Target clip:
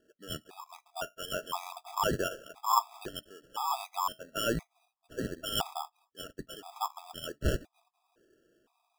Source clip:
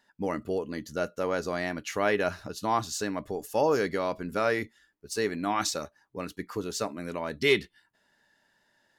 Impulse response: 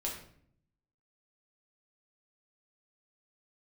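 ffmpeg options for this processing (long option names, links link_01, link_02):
-af "highpass=370,lowpass=3200,lowshelf=frequency=800:width_type=q:width=3:gain=-11.5,acrusher=samples=21:mix=1:aa=0.000001,afftfilt=real='re*gt(sin(2*PI*0.98*pts/sr)*(1-2*mod(floor(b*sr/1024/660),2)),0)':imag='im*gt(sin(2*PI*0.98*pts/sr)*(1-2*mod(floor(b*sr/1024/660),2)),0)':win_size=1024:overlap=0.75"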